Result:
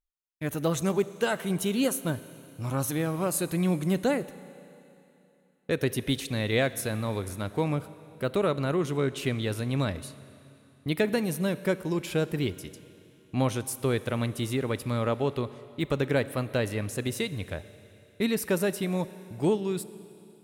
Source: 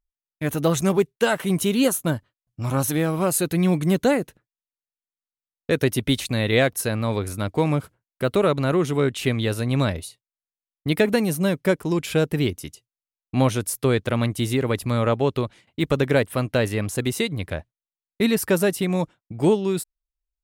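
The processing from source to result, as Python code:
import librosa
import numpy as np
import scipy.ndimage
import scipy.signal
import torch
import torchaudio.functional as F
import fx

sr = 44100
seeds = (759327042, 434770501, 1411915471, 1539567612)

y = fx.rev_schroeder(x, sr, rt60_s=3.0, comb_ms=29, drr_db=15.0)
y = F.gain(torch.from_numpy(y), -6.5).numpy()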